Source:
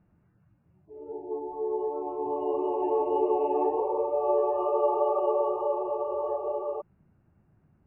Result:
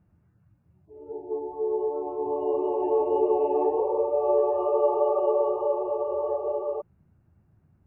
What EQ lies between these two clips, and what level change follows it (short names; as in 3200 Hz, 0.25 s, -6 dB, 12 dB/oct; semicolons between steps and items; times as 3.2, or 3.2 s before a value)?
dynamic EQ 490 Hz, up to +6 dB, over -40 dBFS, Q 1.6; bell 83 Hz +7.5 dB 1.3 oct; -2.0 dB